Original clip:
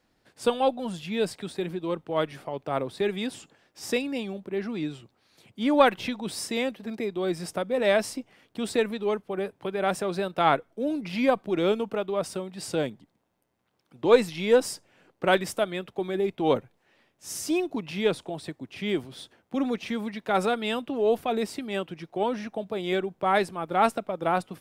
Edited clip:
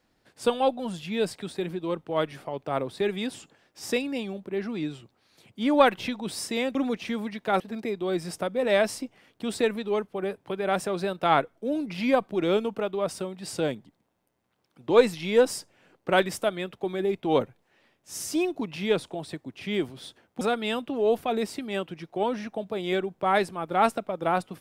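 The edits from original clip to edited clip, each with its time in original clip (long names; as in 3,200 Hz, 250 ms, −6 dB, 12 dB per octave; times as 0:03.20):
0:19.56–0:20.41: move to 0:06.75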